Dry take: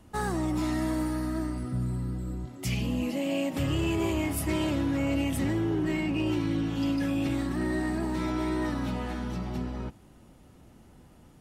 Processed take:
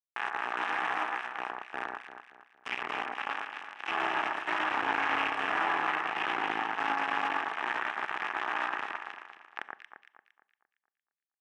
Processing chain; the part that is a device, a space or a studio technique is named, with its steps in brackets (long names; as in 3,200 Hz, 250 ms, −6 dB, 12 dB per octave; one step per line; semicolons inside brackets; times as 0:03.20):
0:03.32–0:03.88: high-pass filter 250 Hz 12 dB per octave
hand-held game console (bit reduction 4 bits; loudspeaker in its box 490–5,100 Hz, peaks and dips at 540 Hz −10 dB, 830 Hz +8 dB, 1,200 Hz +7 dB, 1,700 Hz +9 dB, 2,600 Hz +4 dB, 4,500 Hz −8 dB)
flat-topped bell 5,100 Hz −8 dB 1.2 octaves
delay that swaps between a low-pass and a high-pass 115 ms, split 1,800 Hz, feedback 63%, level −2.5 dB
four-comb reverb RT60 0.45 s, combs from 29 ms, DRR 18 dB
level −5.5 dB